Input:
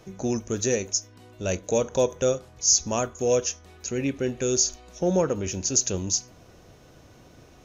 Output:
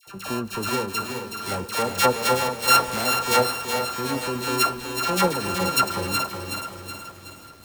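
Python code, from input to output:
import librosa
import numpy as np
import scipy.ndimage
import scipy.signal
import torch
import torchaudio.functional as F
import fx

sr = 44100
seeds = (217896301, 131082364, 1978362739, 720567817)

p1 = np.r_[np.sort(x[:len(x) // 32 * 32].reshape(-1, 32), axis=1).ravel(), x[len(x) // 32 * 32:]]
p2 = fx.low_shelf(p1, sr, hz=88.0, db=-7.0)
p3 = fx.level_steps(p2, sr, step_db=20)
p4 = p2 + (p3 * librosa.db_to_amplitude(3.0))
p5 = fx.dispersion(p4, sr, late='lows', ms=73.0, hz=1200.0)
p6 = p5 + fx.echo_feedback(p5, sr, ms=426, feedback_pct=45, wet_db=-9.5, dry=0)
p7 = fx.echo_crushed(p6, sr, ms=372, feedback_pct=55, bits=7, wet_db=-7)
y = p7 * librosa.db_to_amplitude(-3.0)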